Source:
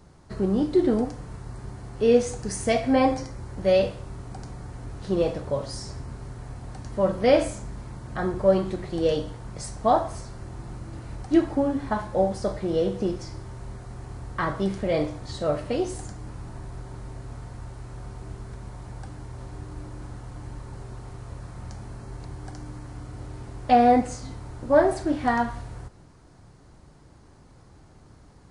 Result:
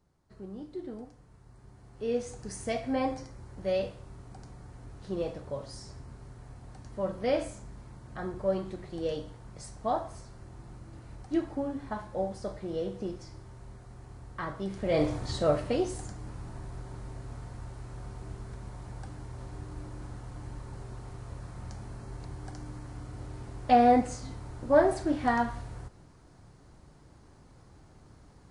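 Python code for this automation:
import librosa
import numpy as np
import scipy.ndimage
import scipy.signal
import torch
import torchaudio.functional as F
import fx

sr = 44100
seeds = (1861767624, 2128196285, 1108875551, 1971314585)

y = fx.gain(x, sr, db=fx.line((1.3, -19.0), (2.45, -9.5), (14.67, -9.5), (15.13, 2.5), (15.92, -3.5)))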